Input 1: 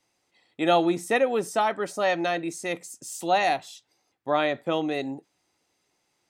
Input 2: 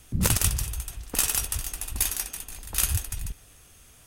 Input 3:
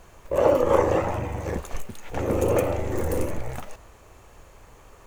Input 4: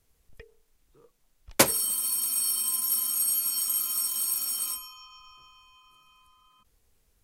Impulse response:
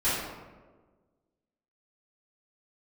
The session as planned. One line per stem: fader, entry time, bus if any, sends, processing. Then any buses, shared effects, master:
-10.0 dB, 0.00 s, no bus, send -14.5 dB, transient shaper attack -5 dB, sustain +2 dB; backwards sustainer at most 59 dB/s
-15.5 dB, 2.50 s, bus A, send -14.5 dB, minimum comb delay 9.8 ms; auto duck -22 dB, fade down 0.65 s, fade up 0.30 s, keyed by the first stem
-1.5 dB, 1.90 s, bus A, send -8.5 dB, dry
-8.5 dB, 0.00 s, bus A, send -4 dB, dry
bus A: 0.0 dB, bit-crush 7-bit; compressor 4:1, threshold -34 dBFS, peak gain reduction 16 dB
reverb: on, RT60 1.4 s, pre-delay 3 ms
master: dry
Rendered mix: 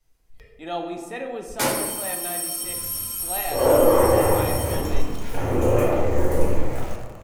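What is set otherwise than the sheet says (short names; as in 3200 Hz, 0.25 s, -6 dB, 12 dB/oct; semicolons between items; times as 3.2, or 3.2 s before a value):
stem 1: missing backwards sustainer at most 59 dB/s; stem 3: entry 1.90 s -> 3.20 s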